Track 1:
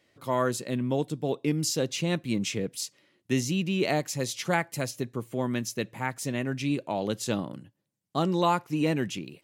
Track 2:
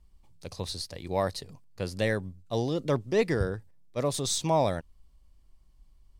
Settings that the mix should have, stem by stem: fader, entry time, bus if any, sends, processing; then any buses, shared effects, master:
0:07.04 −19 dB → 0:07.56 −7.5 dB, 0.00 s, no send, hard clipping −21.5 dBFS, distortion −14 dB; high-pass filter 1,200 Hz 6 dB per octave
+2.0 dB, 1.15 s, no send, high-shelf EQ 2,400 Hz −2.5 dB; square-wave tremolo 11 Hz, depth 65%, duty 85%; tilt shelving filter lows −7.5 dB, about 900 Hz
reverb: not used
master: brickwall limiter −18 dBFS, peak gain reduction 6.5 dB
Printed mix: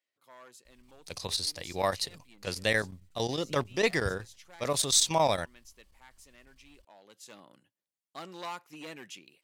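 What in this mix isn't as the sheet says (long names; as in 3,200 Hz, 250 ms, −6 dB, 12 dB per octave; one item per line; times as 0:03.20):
stem 2: entry 1.15 s → 0.65 s
master: missing brickwall limiter −18 dBFS, peak gain reduction 6.5 dB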